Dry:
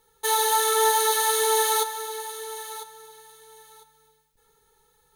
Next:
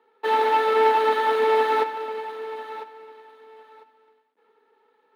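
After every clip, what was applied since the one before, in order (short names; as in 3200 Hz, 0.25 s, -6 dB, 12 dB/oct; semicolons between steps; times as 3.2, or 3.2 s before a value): half-waves squared off; steep high-pass 230 Hz 48 dB/oct; air absorption 470 m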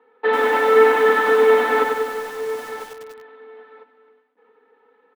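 LPF 2300 Hz 12 dB/oct; comb 4 ms, depth 70%; lo-fi delay 97 ms, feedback 55%, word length 7-bit, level -4.5 dB; gain +5 dB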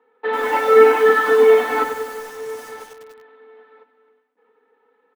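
spectral noise reduction 7 dB; gain +3 dB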